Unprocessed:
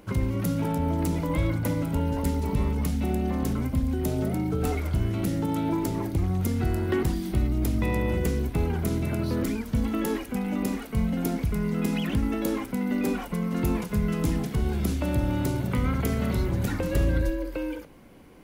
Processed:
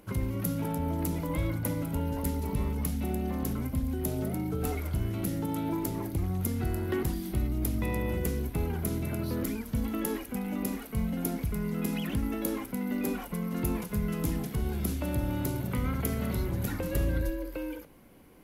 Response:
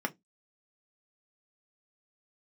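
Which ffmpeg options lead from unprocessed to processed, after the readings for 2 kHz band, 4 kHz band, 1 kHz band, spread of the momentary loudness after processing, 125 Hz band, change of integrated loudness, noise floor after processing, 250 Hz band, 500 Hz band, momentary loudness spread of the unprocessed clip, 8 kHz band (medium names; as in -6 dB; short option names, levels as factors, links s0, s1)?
-5.0 dB, -5.0 dB, -5.0 dB, 2 LU, -5.0 dB, -4.5 dB, -44 dBFS, -5.0 dB, -5.0 dB, 2 LU, 0.0 dB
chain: -af "equalizer=f=12000:w=2.3:g=13,volume=0.562"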